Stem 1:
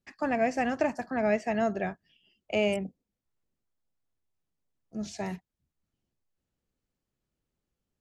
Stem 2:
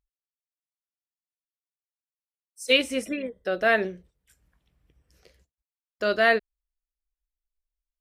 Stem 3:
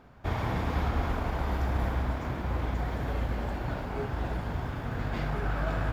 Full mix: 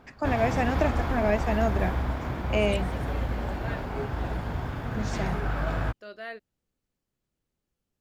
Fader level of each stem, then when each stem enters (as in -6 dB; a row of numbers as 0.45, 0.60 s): +1.0, -19.0, +1.5 dB; 0.00, 0.00, 0.00 s